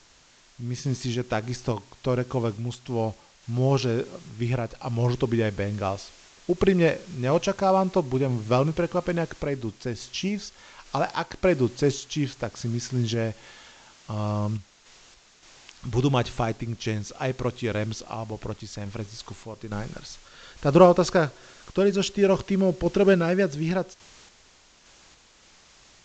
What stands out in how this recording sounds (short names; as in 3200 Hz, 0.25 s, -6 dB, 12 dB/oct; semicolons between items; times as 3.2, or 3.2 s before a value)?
a quantiser's noise floor 8-bit, dither triangular; random-step tremolo; µ-law